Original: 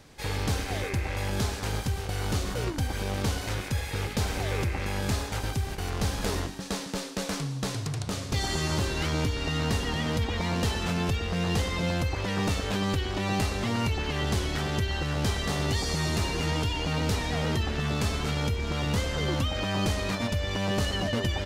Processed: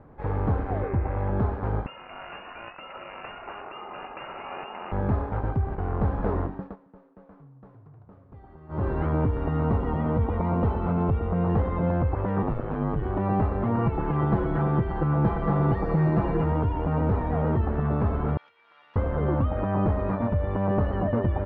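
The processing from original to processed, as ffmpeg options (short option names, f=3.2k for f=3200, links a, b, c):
-filter_complex "[0:a]asettb=1/sr,asplit=3[a][b][c];[a]atrim=end=1.864[d];[b]atrim=start=1.86:end=4.92,asetpts=PTS-STARTPTS,afade=t=in:d=0.004:c=qsin,afade=t=out:st=3.056:d=0.004:c=qsin,lowpass=f=2.5k:t=q:w=0.5098,lowpass=f=2.5k:t=q:w=0.6013,lowpass=f=2.5k:t=q:w=0.9,lowpass=f=2.5k:t=q:w=2.563,afreqshift=-2900[e];[c]atrim=start=4.916[f];[d][e]acrossfade=d=0.004:c1=hsin:c2=qsin[g];[g][f]acrossfade=d=0.004:c1=qsin:c2=hsin,asettb=1/sr,asplit=3[h][i][j];[h]atrim=end=9.604[k];[i]atrim=start=9.6:end=11.49,asetpts=PTS-STARTPTS,afade=t=in:d=0.004:c=qsin,afade=t=out:st=1.886:d=0.004:c=qsin,asuperstop=centerf=1700:order=4:qfactor=7.4[l];[j]atrim=start=11.486[m];[k][l]acrossfade=d=0.004:c1=hsin:c2=qsin[n];[n][m]acrossfade=d=0.004:c1=qsin:c2=hsin,asettb=1/sr,asplit=3[o][p][q];[o]atrim=end=12.424[r];[p]atrim=start=12.42:end=13.03,asetpts=PTS-STARTPTS,afade=t=in:d=0.004:c=qsin,afade=t=out:st=0.606:d=0.004:c=qsin,aeval=exprs='val(0)*sin(2*PI*52*n/s)':c=same[s];[q]atrim=start=13.026[t];[r][s]acrossfade=d=0.004:c1=hsin:c2=qsin[u];[u][t]acrossfade=d=0.004:c1=qsin:c2=hsin,asettb=1/sr,asplit=3[v][w][x];[v]atrim=end=13.784[y];[w]atrim=start=13.78:end=16.44,asetpts=PTS-STARTPTS,afade=t=in:d=0.004:c=qsin,afade=t=out:st=2.656:d=0.004:c=qsin,aecho=1:1:6:0.9,atrim=end_sample=117306[z];[x]atrim=start=16.436[aa];[y][z]acrossfade=d=0.004:c1=hsin:c2=qsin[ab];[ab][aa]acrossfade=d=0.004:c1=qsin:c2=hsin,asettb=1/sr,asplit=3[ac][ad][ae];[ac]atrim=end=18.374[af];[ad]atrim=start=18.37:end=18.96,asetpts=PTS-STARTPTS,afade=t=in:d=0.004:c=qsin,afade=t=out:st=0.586:d=0.004:c=qsin,asuperpass=centerf=5100:order=4:qfactor=0.84[ag];[ae]atrim=start=18.956[ah];[af][ag]acrossfade=d=0.004:c1=hsin:c2=qsin[ai];[ai][ah]acrossfade=d=0.004:c1=qsin:c2=hsin,asplit=3[aj][ak][al];[aj]atrim=end=6.76,asetpts=PTS-STARTPTS,afade=t=out:st=6.57:d=0.19:silence=0.0794328[am];[ak]atrim=start=6.76:end=8.68,asetpts=PTS-STARTPTS,volume=-22dB[an];[al]atrim=start=8.68,asetpts=PTS-STARTPTS,afade=t=in:d=0.19:silence=0.0794328[ao];[am][an][ao]concat=n=3:v=0:a=1,lowpass=f=1.2k:w=0.5412,lowpass=f=1.2k:w=1.3066,aemphasis=mode=production:type=75kf,volume=4dB"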